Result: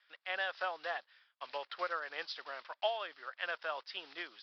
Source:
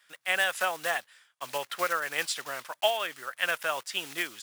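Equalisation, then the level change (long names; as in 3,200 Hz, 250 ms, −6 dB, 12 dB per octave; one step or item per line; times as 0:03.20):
high-pass filter 420 Hz 12 dB per octave
Butterworth low-pass 5,200 Hz 96 dB per octave
dynamic equaliser 2,400 Hz, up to −7 dB, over −42 dBFS, Q 1.4
−6.5 dB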